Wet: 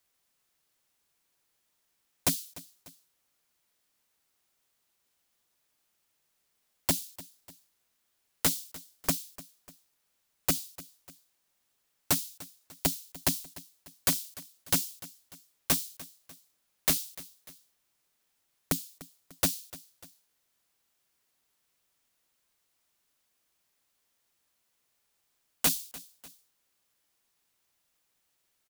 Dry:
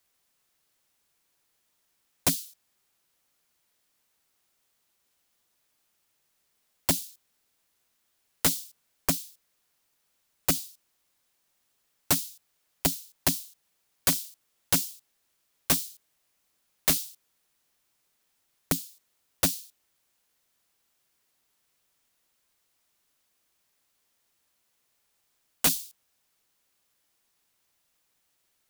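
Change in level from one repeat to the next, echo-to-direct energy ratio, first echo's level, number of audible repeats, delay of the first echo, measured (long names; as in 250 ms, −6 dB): −6.5 dB, −18.0 dB, −19.0 dB, 2, 297 ms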